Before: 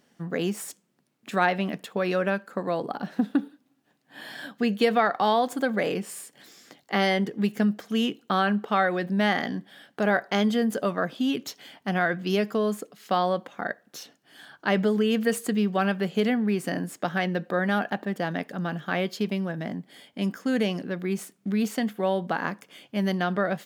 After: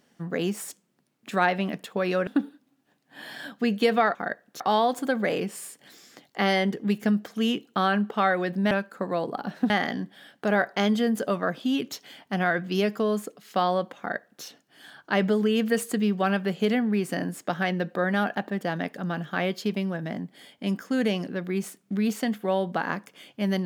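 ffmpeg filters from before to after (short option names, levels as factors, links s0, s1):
-filter_complex "[0:a]asplit=6[s0][s1][s2][s3][s4][s5];[s0]atrim=end=2.272[s6];[s1]atrim=start=3.258:end=5.142[s7];[s2]atrim=start=13.538:end=13.992[s8];[s3]atrim=start=5.138:end=9.252[s9];[s4]atrim=start=2.268:end=3.262[s10];[s5]atrim=start=9.248[s11];[s6][s7]acrossfade=d=0.004:c1=hsin:c2=hsin[s12];[s12][s8]acrossfade=d=0.004:c1=hsin:c2=hsin[s13];[s13][s9]acrossfade=d=0.004:c1=hsin:c2=hsin[s14];[s14][s10]acrossfade=d=0.004:c1=hsin:c2=hsin[s15];[s15][s11]acrossfade=d=0.004:c1=hsin:c2=hsin"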